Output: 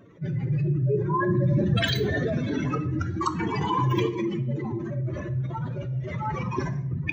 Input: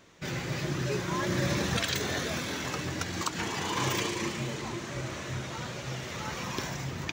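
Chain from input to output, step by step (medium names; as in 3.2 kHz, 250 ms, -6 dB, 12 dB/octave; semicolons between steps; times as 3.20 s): spectral contrast enhancement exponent 2.9; simulated room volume 210 m³, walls mixed, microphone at 0.33 m; trim +6.5 dB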